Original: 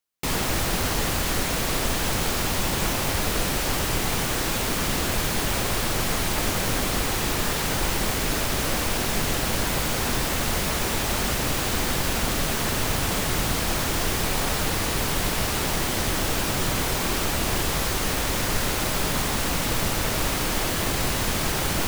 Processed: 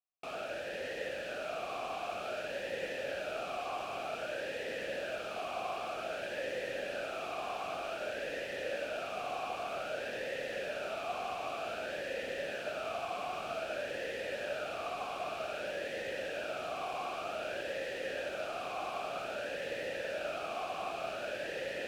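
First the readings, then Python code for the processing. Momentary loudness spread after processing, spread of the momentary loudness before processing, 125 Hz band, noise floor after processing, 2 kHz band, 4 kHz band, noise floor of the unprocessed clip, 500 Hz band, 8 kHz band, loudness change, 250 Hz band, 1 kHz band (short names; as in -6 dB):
1 LU, 0 LU, -29.5 dB, -41 dBFS, -12.0 dB, -18.0 dB, -26 dBFS, -6.0 dB, -28.5 dB, -14.5 dB, -21.0 dB, -10.5 dB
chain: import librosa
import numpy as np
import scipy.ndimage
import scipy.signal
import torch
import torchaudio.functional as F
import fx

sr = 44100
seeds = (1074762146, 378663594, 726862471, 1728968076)

y = fx.echo_diffused(x, sr, ms=570, feedback_pct=80, wet_db=-8.5)
y = fx.vowel_sweep(y, sr, vowels='a-e', hz=0.53)
y = F.gain(torch.from_numpy(y), -1.0).numpy()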